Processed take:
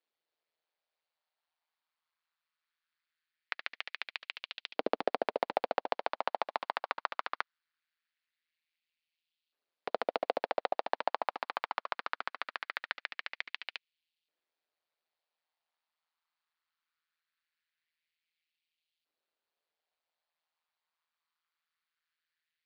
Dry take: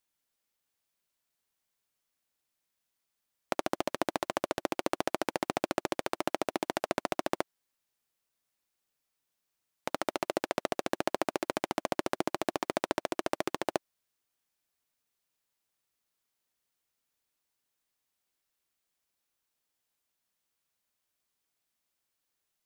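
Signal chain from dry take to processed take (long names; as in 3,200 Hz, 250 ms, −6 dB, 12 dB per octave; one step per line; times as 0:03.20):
Chebyshev band-pass filter 110–4,500 Hz, order 4
auto-filter high-pass saw up 0.21 Hz 430–3,100 Hz
ring modulation 81 Hz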